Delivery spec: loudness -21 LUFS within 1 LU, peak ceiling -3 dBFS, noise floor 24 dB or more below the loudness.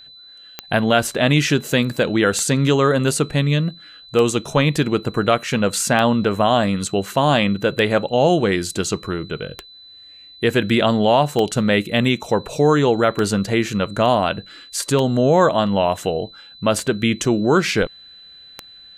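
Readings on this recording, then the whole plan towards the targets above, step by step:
clicks 11; steady tone 4000 Hz; tone level -41 dBFS; loudness -18.5 LUFS; peak -2.5 dBFS; loudness target -21.0 LUFS
-> de-click; notch 4000 Hz, Q 30; gain -2.5 dB

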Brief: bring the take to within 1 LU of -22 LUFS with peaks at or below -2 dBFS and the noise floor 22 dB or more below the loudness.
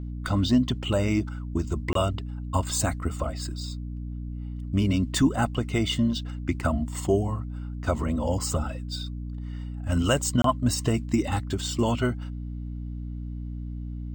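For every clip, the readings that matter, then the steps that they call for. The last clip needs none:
dropouts 2; longest dropout 23 ms; hum 60 Hz; harmonics up to 300 Hz; hum level -31 dBFS; loudness -27.5 LUFS; peak -9.5 dBFS; loudness target -22.0 LUFS
-> interpolate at 1.93/10.42, 23 ms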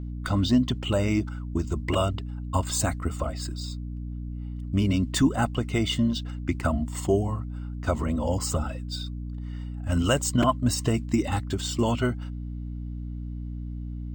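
dropouts 0; hum 60 Hz; harmonics up to 300 Hz; hum level -31 dBFS
-> de-hum 60 Hz, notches 5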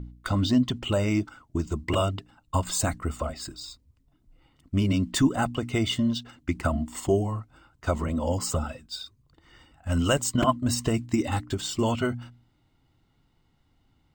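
hum none; loudness -27.5 LUFS; peak -10.0 dBFS; loudness target -22.0 LUFS
-> gain +5.5 dB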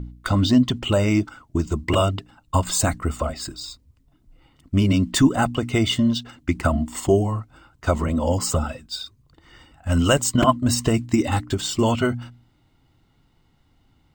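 loudness -22.0 LUFS; peak -4.5 dBFS; noise floor -62 dBFS

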